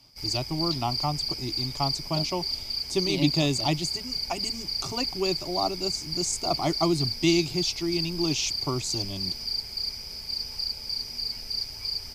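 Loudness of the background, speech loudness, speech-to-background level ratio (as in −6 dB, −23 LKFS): −29.5 LKFS, −29.0 LKFS, 0.5 dB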